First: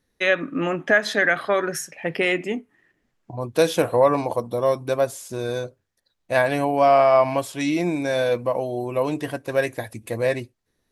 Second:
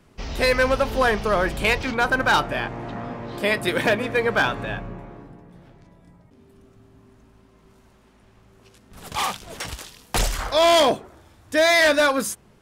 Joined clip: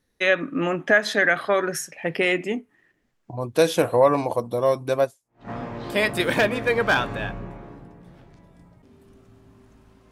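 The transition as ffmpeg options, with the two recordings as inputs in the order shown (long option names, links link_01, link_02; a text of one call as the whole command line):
ffmpeg -i cue0.wav -i cue1.wav -filter_complex "[0:a]apad=whole_dur=10.11,atrim=end=10.11,atrim=end=5.5,asetpts=PTS-STARTPTS[link_01];[1:a]atrim=start=2.52:end=7.59,asetpts=PTS-STARTPTS[link_02];[link_01][link_02]acrossfade=duration=0.46:curve1=exp:curve2=exp" out.wav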